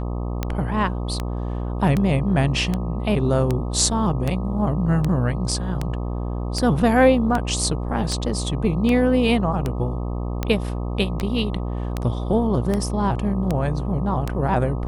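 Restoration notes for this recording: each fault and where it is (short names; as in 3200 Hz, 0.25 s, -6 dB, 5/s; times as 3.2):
buzz 60 Hz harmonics 21 -26 dBFS
tick 78 rpm -10 dBFS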